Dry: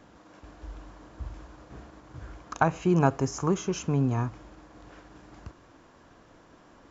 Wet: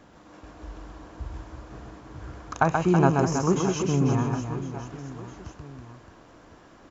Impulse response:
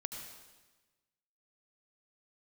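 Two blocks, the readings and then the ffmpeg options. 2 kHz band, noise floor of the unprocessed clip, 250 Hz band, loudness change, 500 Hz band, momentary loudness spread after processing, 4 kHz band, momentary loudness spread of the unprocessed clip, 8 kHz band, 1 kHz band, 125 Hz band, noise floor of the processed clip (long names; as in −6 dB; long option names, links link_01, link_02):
+3.5 dB, −56 dBFS, +4.0 dB, +2.5 dB, +4.0 dB, 22 LU, +3.5 dB, 22 LU, can't be measured, +3.5 dB, +3.5 dB, −53 dBFS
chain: -af "aecho=1:1:130|325|617.5|1056|1714:0.631|0.398|0.251|0.158|0.1,volume=1.5dB"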